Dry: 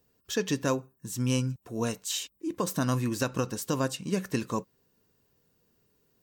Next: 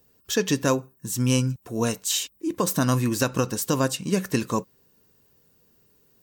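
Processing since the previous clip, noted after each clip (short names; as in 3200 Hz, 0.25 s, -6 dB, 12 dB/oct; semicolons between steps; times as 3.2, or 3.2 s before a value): high shelf 7800 Hz +5 dB; gain +5.5 dB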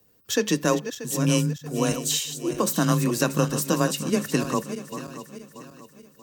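regenerating reverse delay 0.317 s, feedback 62%, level -10 dB; frequency shift +22 Hz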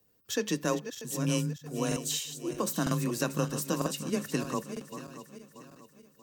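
crackling interface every 0.95 s, samples 2048, repeat, from 0.92; gain -7.5 dB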